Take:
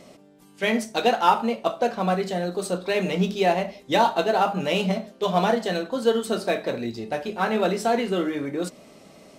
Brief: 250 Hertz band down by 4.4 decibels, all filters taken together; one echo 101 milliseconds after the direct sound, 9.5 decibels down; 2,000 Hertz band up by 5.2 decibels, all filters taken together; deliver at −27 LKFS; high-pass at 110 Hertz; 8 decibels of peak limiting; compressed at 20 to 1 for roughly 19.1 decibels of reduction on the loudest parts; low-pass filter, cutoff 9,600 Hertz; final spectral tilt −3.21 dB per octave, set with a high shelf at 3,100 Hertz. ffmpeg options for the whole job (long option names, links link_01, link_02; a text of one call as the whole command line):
ffmpeg -i in.wav -af "highpass=110,lowpass=9600,equalizer=frequency=250:width_type=o:gain=-6,equalizer=frequency=2000:width_type=o:gain=9,highshelf=frequency=3100:gain=-6.5,acompressor=threshold=-30dB:ratio=20,alimiter=level_in=1.5dB:limit=-24dB:level=0:latency=1,volume=-1.5dB,aecho=1:1:101:0.335,volume=9dB" out.wav